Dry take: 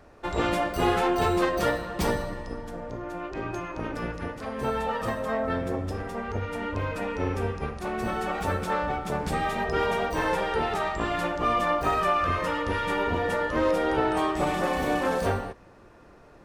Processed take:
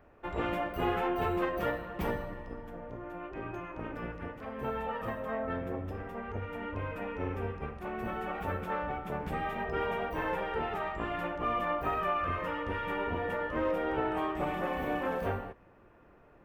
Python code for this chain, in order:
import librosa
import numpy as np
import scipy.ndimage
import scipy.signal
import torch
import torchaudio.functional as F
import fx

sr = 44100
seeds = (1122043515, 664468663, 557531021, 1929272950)

y = fx.dmg_crackle(x, sr, seeds[0], per_s=89.0, level_db=-54.0, at=(8.65, 9.37), fade=0.02)
y = fx.band_shelf(y, sr, hz=6300.0, db=-14.0, octaves=1.7)
y = y * 10.0 ** (-7.0 / 20.0)